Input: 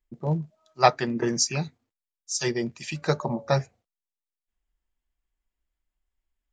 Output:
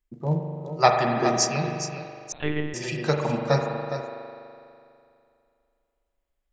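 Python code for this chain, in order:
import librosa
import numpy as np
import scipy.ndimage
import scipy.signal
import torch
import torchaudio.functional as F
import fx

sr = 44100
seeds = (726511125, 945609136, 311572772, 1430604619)

y = x + 10.0 ** (-10.0 / 20.0) * np.pad(x, (int(413 * sr / 1000.0), 0))[:len(x)]
y = fx.rev_spring(y, sr, rt60_s=2.5, pass_ms=(41,), chirp_ms=50, drr_db=2.5)
y = fx.lpc_monotone(y, sr, seeds[0], pitch_hz=150.0, order=10, at=(2.32, 2.74))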